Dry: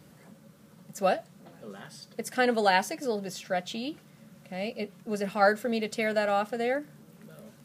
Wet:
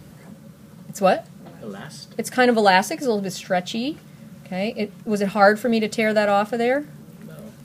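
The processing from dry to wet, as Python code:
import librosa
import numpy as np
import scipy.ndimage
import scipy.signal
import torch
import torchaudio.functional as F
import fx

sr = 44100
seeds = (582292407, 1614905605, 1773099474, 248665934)

y = fx.low_shelf(x, sr, hz=130.0, db=10.0)
y = y * 10.0 ** (7.5 / 20.0)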